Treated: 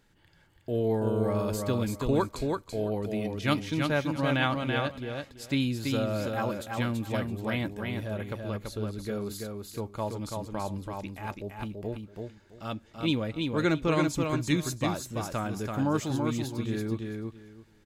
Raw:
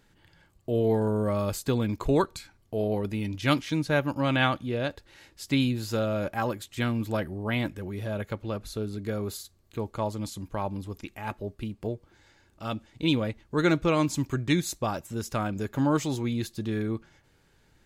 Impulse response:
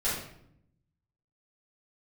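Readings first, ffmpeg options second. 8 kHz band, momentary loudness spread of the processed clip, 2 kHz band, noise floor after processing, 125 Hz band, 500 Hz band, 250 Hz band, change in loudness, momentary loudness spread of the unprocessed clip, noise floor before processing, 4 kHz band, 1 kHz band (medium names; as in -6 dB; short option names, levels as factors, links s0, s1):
-1.5 dB, 11 LU, -1.5 dB, -60 dBFS, -1.5 dB, -1.5 dB, -1.5 dB, -1.5 dB, 11 LU, -64 dBFS, -1.5 dB, -1.5 dB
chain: -af "aecho=1:1:333|666|999:0.631|0.126|0.0252,volume=0.708"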